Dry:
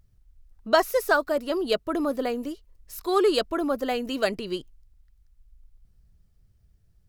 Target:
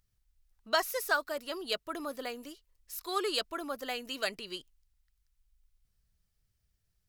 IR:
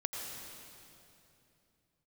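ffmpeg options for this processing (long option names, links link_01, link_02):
-af "tiltshelf=frequency=880:gain=-7.5,volume=-9dB"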